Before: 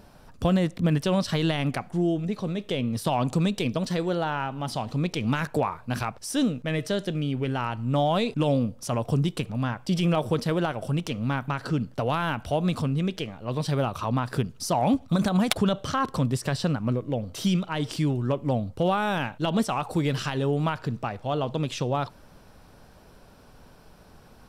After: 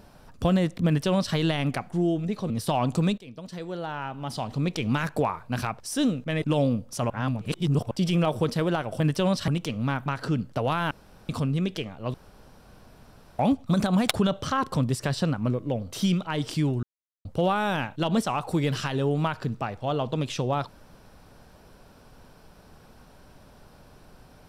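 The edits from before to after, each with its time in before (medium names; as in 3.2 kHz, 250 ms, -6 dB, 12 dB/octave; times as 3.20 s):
0.87–1.35 s: copy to 10.90 s
2.50–2.88 s: delete
3.56–5.02 s: fade in, from -22 dB
6.80–8.32 s: delete
9.00–9.81 s: reverse
12.33–12.71 s: room tone
13.56–14.81 s: room tone
18.25–18.67 s: mute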